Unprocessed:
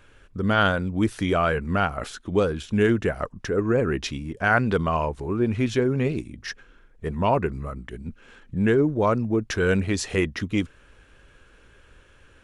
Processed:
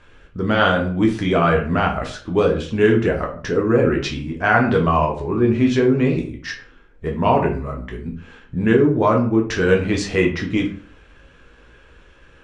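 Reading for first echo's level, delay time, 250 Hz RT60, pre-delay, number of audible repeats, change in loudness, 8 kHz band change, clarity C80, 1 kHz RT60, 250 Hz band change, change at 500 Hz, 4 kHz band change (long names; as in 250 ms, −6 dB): no echo audible, no echo audible, 0.50 s, 8 ms, no echo audible, +5.5 dB, can't be measured, 14.0 dB, 0.45 s, +6.0 dB, +6.0 dB, +4.0 dB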